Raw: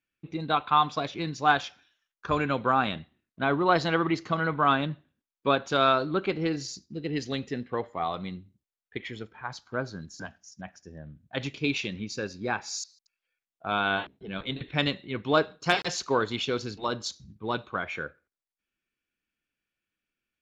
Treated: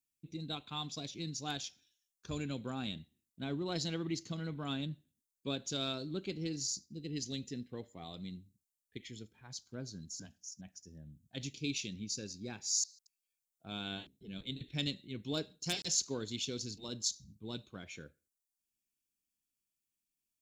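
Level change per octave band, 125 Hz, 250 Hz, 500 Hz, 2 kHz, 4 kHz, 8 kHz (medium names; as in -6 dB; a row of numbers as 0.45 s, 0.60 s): -7.5 dB, -9.0 dB, -15.5 dB, -18.5 dB, -5.5 dB, no reading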